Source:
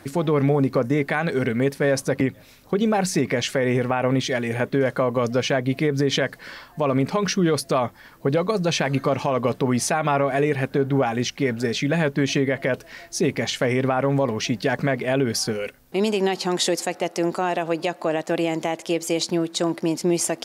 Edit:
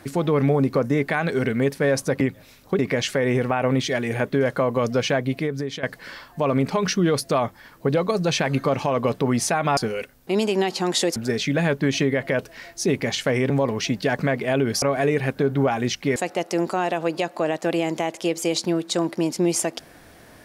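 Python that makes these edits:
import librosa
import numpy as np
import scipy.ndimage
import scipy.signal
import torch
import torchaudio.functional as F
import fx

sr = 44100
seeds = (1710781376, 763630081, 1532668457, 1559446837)

y = fx.edit(x, sr, fx.cut(start_s=2.79, length_s=0.4),
    fx.fade_out_to(start_s=5.56, length_s=0.67, floor_db=-14.0),
    fx.swap(start_s=10.17, length_s=1.34, other_s=15.42, other_length_s=1.39),
    fx.cut(start_s=13.85, length_s=0.25), tone=tone)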